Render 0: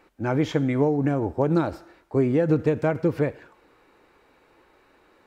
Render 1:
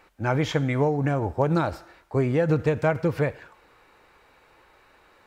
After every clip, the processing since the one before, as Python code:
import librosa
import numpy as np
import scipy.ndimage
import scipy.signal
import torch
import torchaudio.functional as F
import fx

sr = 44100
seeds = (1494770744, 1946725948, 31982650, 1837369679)

y = fx.peak_eq(x, sr, hz=300.0, db=-9.0, octaves=1.4)
y = F.gain(torch.from_numpy(y), 4.0).numpy()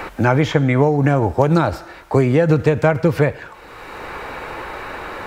y = fx.band_squash(x, sr, depth_pct=70)
y = F.gain(torch.from_numpy(y), 8.0).numpy()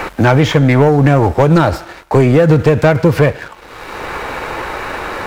y = fx.leveller(x, sr, passes=2)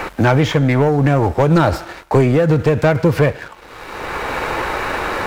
y = fx.rider(x, sr, range_db=4, speed_s=0.5)
y = F.gain(torch.from_numpy(y), -2.5).numpy()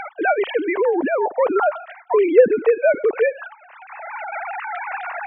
y = fx.sine_speech(x, sr)
y = F.gain(torch.from_numpy(y), -4.0).numpy()